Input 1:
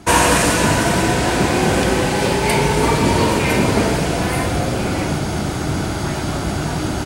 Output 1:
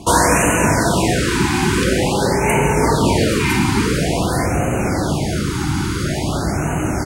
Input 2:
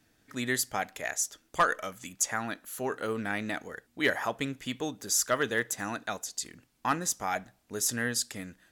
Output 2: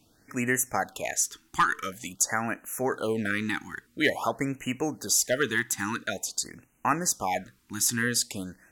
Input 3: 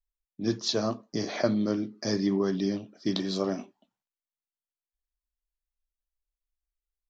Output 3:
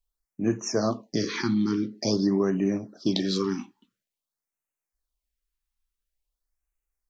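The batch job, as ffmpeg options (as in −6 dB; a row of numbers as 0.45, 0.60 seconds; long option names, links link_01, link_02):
-filter_complex "[0:a]asplit=2[link_01][link_02];[link_02]acompressor=threshold=-28dB:ratio=4,volume=1.5dB[link_03];[link_01][link_03]amix=inputs=2:normalize=0,afftfilt=real='re*(1-between(b*sr/1024,530*pow(4300/530,0.5+0.5*sin(2*PI*0.48*pts/sr))/1.41,530*pow(4300/530,0.5+0.5*sin(2*PI*0.48*pts/sr))*1.41))':imag='im*(1-between(b*sr/1024,530*pow(4300/530,0.5+0.5*sin(2*PI*0.48*pts/sr))/1.41,530*pow(4300/530,0.5+0.5*sin(2*PI*0.48*pts/sr))*1.41))':win_size=1024:overlap=0.75,volume=-1.5dB"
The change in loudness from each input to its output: 0.0, +3.0, +2.5 LU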